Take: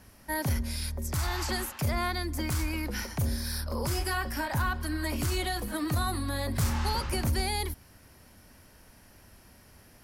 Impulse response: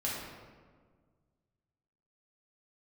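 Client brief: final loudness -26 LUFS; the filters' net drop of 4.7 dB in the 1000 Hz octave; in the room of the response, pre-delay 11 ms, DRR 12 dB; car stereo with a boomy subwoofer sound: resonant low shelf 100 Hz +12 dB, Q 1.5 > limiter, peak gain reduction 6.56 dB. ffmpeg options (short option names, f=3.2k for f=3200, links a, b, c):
-filter_complex "[0:a]equalizer=f=1k:t=o:g=-6,asplit=2[a][b];[1:a]atrim=start_sample=2205,adelay=11[c];[b][c]afir=irnorm=-1:irlink=0,volume=-17dB[d];[a][d]amix=inputs=2:normalize=0,lowshelf=f=100:t=q:w=1.5:g=12,volume=-2.5dB,alimiter=limit=-16dB:level=0:latency=1"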